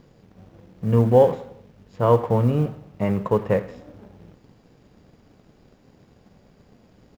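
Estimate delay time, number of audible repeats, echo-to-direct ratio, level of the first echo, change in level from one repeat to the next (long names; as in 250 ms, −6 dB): 88 ms, 3, −17.0 dB, −18.0 dB, −6.0 dB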